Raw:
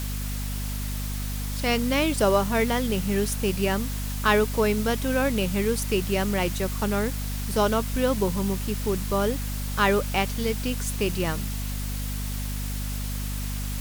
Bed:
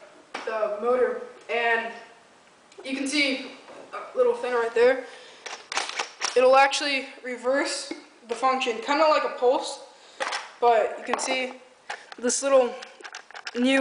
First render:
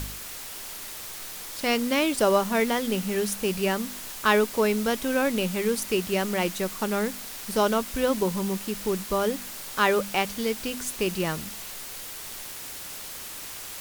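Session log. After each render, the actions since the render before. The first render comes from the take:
hum removal 50 Hz, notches 5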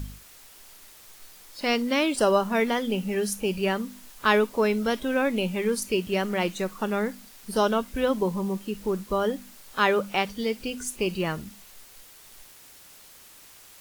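noise reduction from a noise print 12 dB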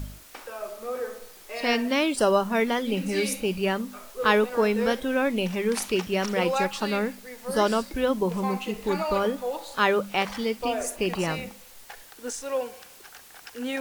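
mix in bed −9.5 dB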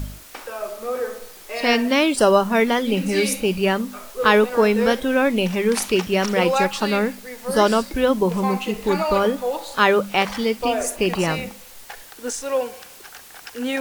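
level +6 dB
brickwall limiter −3 dBFS, peak gain reduction 1.5 dB

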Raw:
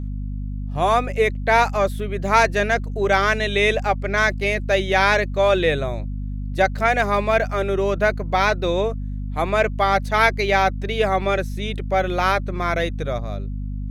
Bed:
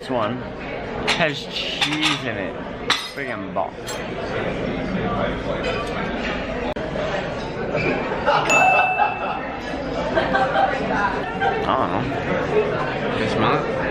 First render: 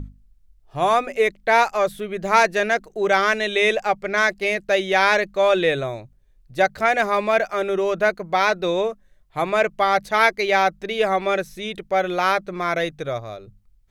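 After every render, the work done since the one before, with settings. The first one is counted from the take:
mains-hum notches 50/100/150/200/250 Hz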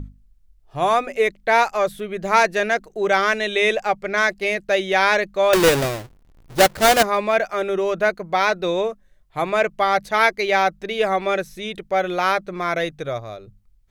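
0:05.53–0:07.03: each half-wave held at its own peak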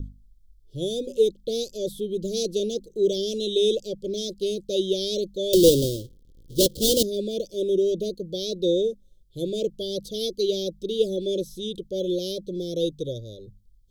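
Chebyshev band-stop filter 530–3,200 Hz, order 5
dynamic equaliser 310 Hz, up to +3 dB, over −34 dBFS, Q 2.1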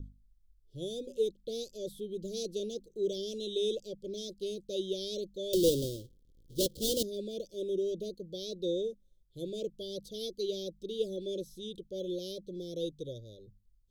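level −10.5 dB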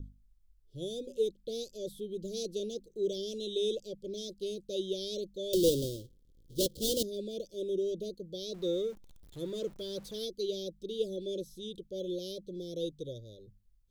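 0:08.54–0:10.25: converter with a step at zero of −50 dBFS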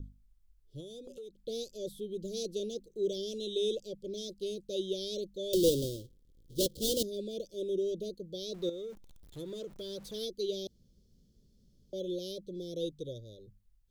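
0:00.80–0:01.40: downward compressor 8 to 1, threshold −43 dBFS
0:08.69–0:10.07: downward compressor 10 to 1, threshold −37 dBFS
0:10.67–0:11.93: fill with room tone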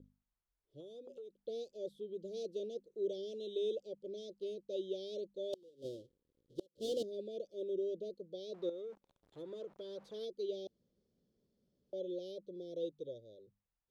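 resonant band-pass 810 Hz, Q 0.91
gate with flip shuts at −27 dBFS, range −31 dB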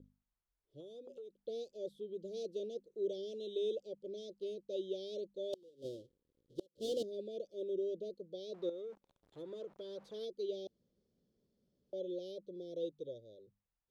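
no processing that can be heard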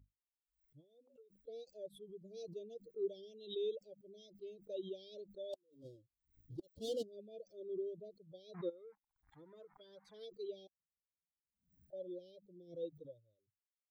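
spectral dynamics exaggerated over time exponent 2
background raised ahead of every attack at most 130 dB per second

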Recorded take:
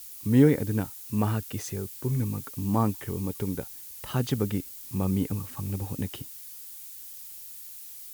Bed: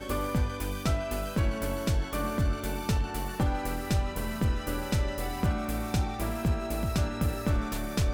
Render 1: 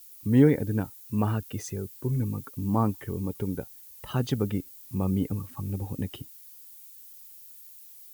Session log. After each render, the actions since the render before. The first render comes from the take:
broadband denoise 9 dB, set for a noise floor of −44 dBFS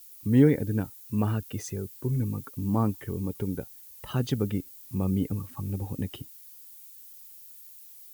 dynamic equaliser 920 Hz, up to −4 dB, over −42 dBFS, Q 1.2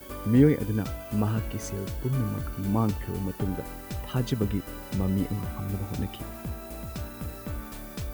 mix in bed −8 dB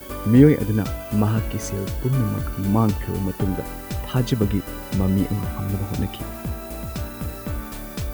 level +6.5 dB

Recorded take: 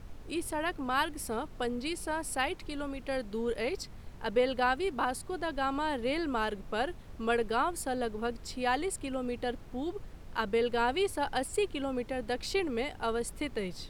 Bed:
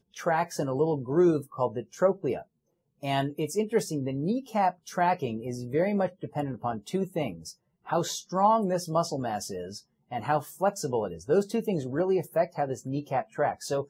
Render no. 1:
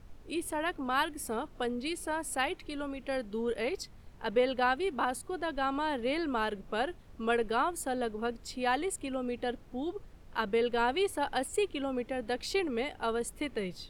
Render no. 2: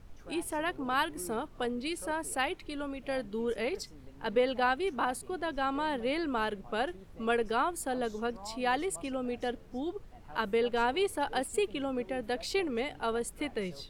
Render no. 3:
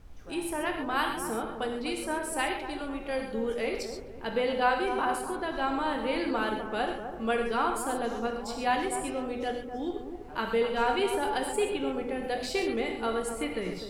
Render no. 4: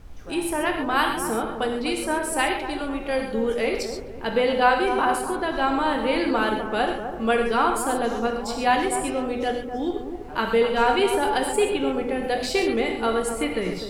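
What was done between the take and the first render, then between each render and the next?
noise reduction from a noise print 6 dB
mix in bed −24 dB
delay with a low-pass on its return 251 ms, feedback 36%, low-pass 1,300 Hz, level −8 dB; reverb whose tail is shaped and stops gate 160 ms flat, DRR 2.5 dB
level +7 dB

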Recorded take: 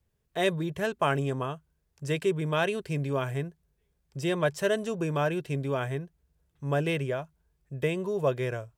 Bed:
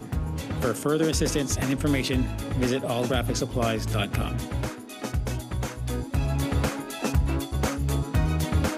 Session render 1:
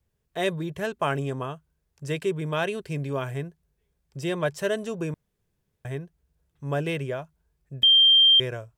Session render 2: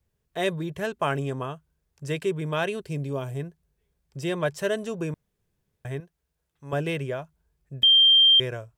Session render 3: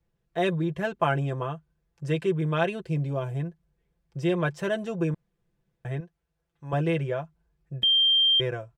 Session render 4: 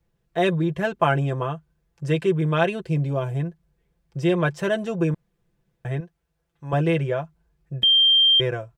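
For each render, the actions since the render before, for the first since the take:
0:05.14–0:05.85: fill with room tone; 0:07.83–0:08.40: beep over 3,170 Hz −13 dBFS
0:02.81–0:03.39: parametric band 1,700 Hz −4.5 dB → −12 dB 1.5 octaves; 0:06.00–0:06.73: low-shelf EQ 340 Hz −11 dB
low-pass filter 2,400 Hz 6 dB per octave; comb filter 5.9 ms, depth 67%
level +4.5 dB

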